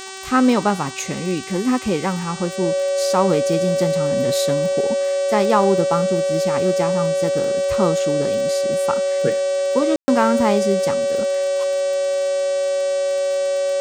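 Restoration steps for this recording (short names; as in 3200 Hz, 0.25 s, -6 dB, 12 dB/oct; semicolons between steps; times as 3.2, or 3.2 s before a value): de-click; de-hum 382.8 Hz, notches 23; notch 560 Hz, Q 30; room tone fill 9.96–10.08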